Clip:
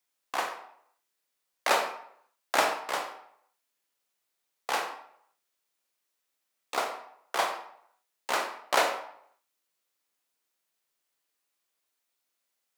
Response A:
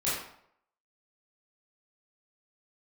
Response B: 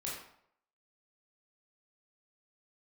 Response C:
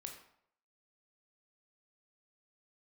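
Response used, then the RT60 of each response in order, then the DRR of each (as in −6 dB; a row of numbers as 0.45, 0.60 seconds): C; 0.70, 0.70, 0.70 seconds; −10.0, −5.5, 2.5 decibels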